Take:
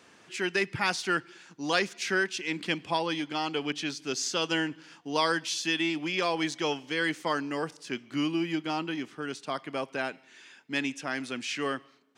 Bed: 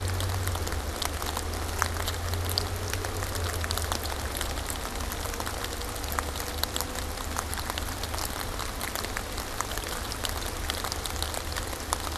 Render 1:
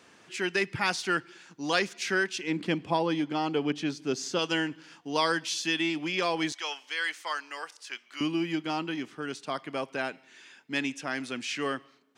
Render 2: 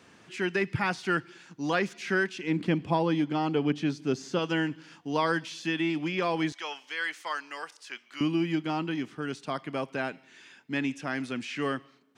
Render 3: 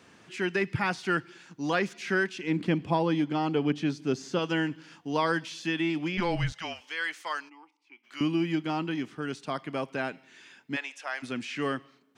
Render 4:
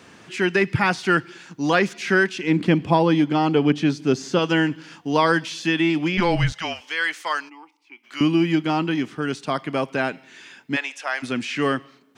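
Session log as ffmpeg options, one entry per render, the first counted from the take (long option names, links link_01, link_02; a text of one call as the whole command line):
ffmpeg -i in.wav -filter_complex "[0:a]asettb=1/sr,asplit=3[link_01][link_02][link_03];[link_01]atrim=end=2.434[link_04];[link_02]atrim=start=2.43:end=4.39,asetpts=PTS-STARTPTS,afade=type=in:duration=0.004:curve=qsin,afade=type=out:start_time=1.956:duration=0.004:curve=qsin,tiltshelf=frequency=1100:gain=5.5[link_05];[link_03]atrim=start=4.386[link_06];[link_04][link_05]acrossfade=duration=0.004:curve1=hsin:curve2=qsin[link_07];[link_07][link_06]acrossfade=duration=0.004:curve1=qsin:curve2=hsin,asettb=1/sr,asplit=3[link_08][link_09][link_10];[link_08]atrim=end=6.524[link_11];[link_09]atrim=start=6.52:end=8.21,asetpts=PTS-STARTPTS,afade=type=in:duration=0.004:curve=qsin,afade=type=out:start_time=1.686:duration=0.004:curve=qsin,highpass=1000[link_12];[link_10]atrim=start=8.206[link_13];[link_11][link_12]acrossfade=duration=0.004:curve1=hsin:curve2=qsin[link_14];[link_14][link_13]acrossfade=duration=0.004:curve1=qsin:curve2=hsin" out.wav
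ffmpeg -i in.wav -filter_complex "[0:a]acrossover=split=2600[link_01][link_02];[link_02]acompressor=threshold=-41dB:ratio=4:attack=1:release=60[link_03];[link_01][link_03]amix=inputs=2:normalize=0,bass=frequency=250:gain=7,treble=frequency=4000:gain=-2" out.wav
ffmpeg -i in.wav -filter_complex "[0:a]asettb=1/sr,asplit=3[link_01][link_02][link_03];[link_01]atrim=end=6.174[link_04];[link_02]atrim=start=6.17:end=6.81,asetpts=PTS-STARTPTS,afade=type=in:duration=0.004:curve=qsin,afade=type=out:start_time=0.636:duration=0.004:curve=qsin,afreqshift=-180[link_05];[link_03]atrim=start=6.806[link_06];[link_04][link_05]acrossfade=duration=0.004:curve1=hsin:curve2=qsin[link_07];[link_07][link_06]acrossfade=duration=0.004:curve1=qsin:curve2=hsin,asplit=3[link_08][link_09][link_10];[link_08]afade=type=out:start_time=7.48:duration=0.02[link_11];[link_09]asplit=3[link_12][link_13][link_14];[link_12]bandpass=frequency=300:width_type=q:width=8,volume=0dB[link_15];[link_13]bandpass=frequency=870:width_type=q:width=8,volume=-6dB[link_16];[link_14]bandpass=frequency=2240:width_type=q:width=8,volume=-9dB[link_17];[link_15][link_16][link_17]amix=inputs=3:normalize=0,afade=type=in:start_time=7.48:duration=0.02,afade=type=out:start_time=8.03:duration=0.02[link_18];[link_10]afade=type=in:start_time=8.03:duration=0.02[link_19];[link_11][link_18][link_19]amix=inputs=3:normalize=0,asplit=3[link_20][link_21][link_22];[link_20]afade=type=out:start_time=10.75:duration=0.02[link_23];[link_21]highpass=frequency=590:width=0.5412,highpass=frequency=590:width=1.3066,afade=type=in:start_time=10.75:duration=0.02,afade=type=out:start_time=11.22:duration=0.02[link_24];[link_22]afade=type=in:start_time=11.22:duration=0.02[link_25];[link_23][link_24][link_25]amix=inputs=3:normalize=0" out.wav
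ffmpeg -i in.wav -af "volume=8.5dB" out.wav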